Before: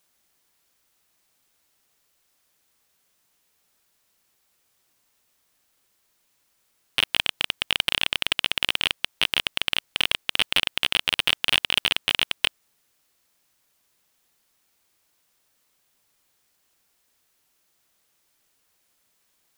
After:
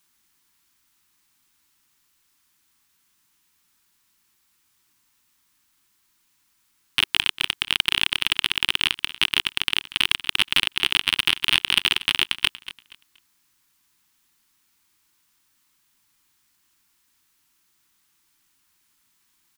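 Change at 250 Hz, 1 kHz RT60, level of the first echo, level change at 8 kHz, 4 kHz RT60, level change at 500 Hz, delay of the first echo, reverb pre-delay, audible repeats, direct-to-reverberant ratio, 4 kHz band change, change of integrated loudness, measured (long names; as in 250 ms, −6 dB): +2.0 dB, no reverb audible, −16.0 dB, +2.0 dB, no reverb audible, −8.0 dB, 237 ms, no reverb audible, 2, no reverb audible, +2.0 dB, +2.0 dB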